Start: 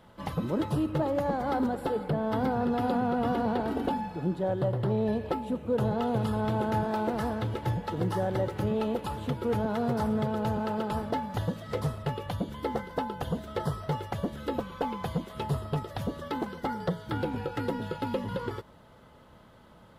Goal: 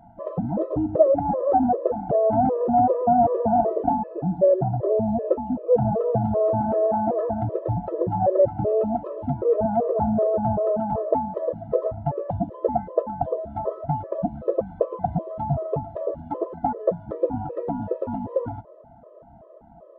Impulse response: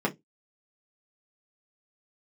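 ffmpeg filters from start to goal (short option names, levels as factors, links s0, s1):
-af "lowpass=f=680:t=q:w=4.9,afftfilt=real='re*gt(sin(2*PI*2.6*pts/sr)*(1-2*mod(floor(b*sr/1024/330),2)),0)':imag='im*gt(sin(2*PI*2.6*pts/sr)*(1-2*mod(floor(b*sr/1024/330),2)),0)':win_size=1024:overlap=0.75,volume=1.78"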